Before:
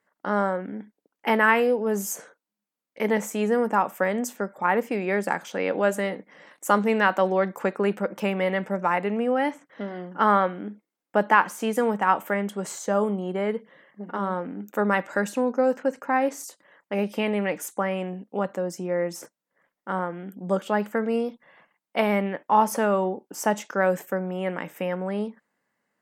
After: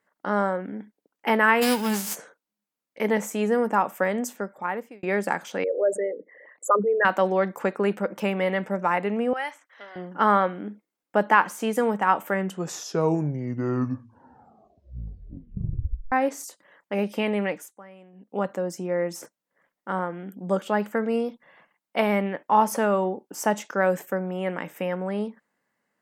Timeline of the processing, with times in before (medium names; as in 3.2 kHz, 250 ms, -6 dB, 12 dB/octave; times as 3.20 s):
1.61–2.14 s: formants flattened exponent 0.3
3.97–5.03 s: fade out equal-power
5.64–7.05 s: resonances exaggerated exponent 3
9.33–9.96 s: high-pass 1 kHz
12.23 s: tape stop 3.89 s
17.46–18.39 s: dip -20 dB, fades 0.26 s